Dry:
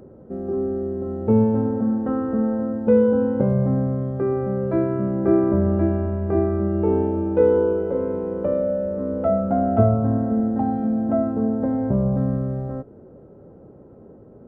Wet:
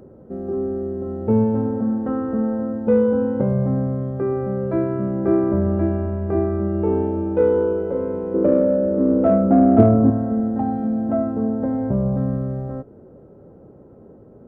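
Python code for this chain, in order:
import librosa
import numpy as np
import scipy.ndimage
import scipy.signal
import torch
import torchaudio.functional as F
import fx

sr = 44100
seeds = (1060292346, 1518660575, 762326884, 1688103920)

p1 = fx.peak_eq(x, sr, hz=310.0, db=14.5, octaves=1.1, at=(8.34, 10.1))
p2 = 10.0 ** (-11.5 / 20.0) * np.tanh(p1 / 10.0 ** (-11.5 / 20.0))
p3 = p1 + (p2 * 10.0 ** (-7.0 / 20.0))
y = p3 * 10.0 ** (-3.0 / 20.0)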